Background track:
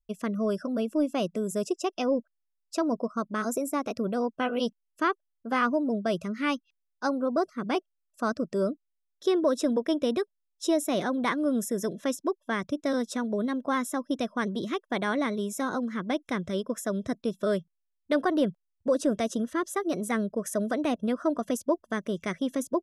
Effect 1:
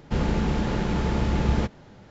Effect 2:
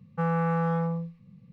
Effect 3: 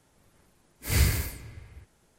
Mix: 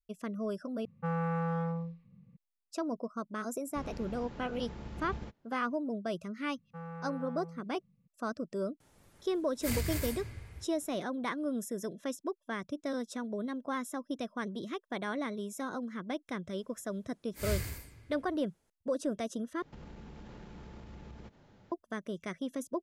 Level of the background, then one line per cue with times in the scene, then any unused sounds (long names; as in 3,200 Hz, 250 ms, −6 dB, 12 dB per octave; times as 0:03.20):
background track −8 dB
0:00.85: overwrite with 2 −6.5 dB + low-pass that shuts in the quiet parts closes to 2,200 Hz, open at −24 dBFS
0:03.64: mix in 1 −17.5 dB + expander for the loud parts, over −34 dBFS
0:06.56: mix in 2 −17.5 dB
0:08.80: mix in 3 + downward compressor 10 to 1, threshold −30 dBFS
0:16.52: mix in 3 −11 dB
0:19.62: overwrite with 1 −12 dB + downward compressor, threshold −34 dBFS